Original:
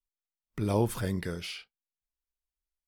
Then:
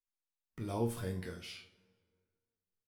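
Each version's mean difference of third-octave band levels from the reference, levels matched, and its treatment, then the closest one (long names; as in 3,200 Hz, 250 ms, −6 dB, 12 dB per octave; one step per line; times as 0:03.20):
3.5 dB: resonators tuned to a chord D#2 minor, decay 0.31 s
dense smooth reverb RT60 1.9 s, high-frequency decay 0.6×, DRR 17.5 dB
level +3 dB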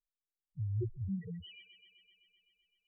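21.0 dB: spectral peaks only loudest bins 1
on a send: delay with a high-pass on its return 128 ms, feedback 76%, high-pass 1,800 Hz, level −7 dB
on the sum: level +2 dB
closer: first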